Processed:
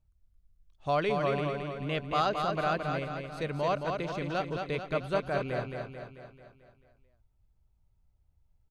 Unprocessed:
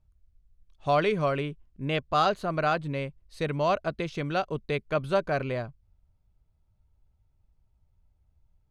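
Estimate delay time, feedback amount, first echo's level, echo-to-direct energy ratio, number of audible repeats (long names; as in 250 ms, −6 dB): 220 ms, 54%, −5.0 dB, −3.5 dB, 6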